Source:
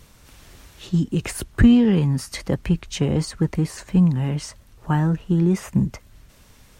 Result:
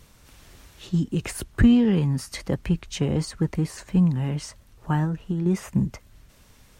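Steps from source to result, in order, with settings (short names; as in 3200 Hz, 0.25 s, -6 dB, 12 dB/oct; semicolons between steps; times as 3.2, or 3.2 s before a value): 5.04–5.46 compressor, threshold -20 dBFS, peak gain reduction 5.5 dB; gain -3 dB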